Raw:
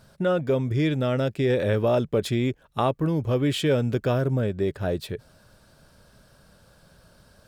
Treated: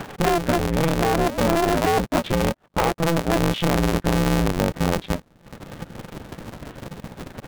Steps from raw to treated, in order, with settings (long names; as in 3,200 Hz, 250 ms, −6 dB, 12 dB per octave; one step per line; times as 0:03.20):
parametric band 570 Hz +12.5 dB 2.4 octaves, from 0:03.37 160 Hz
upward compression, threshold −33 dBFS
leveller curve on the samples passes 3
downward compressor 4 to 1, threshold −22 dBFS, peak gain reduction 14.5 dB
0:01.14–0:01.63: sound drawn into the spectrogram rise 200–1,300 Hz −32 dBFS
linear-prediction vocoder at 8 kHz pitch kept
ring modulator with a square carrier 170 Hz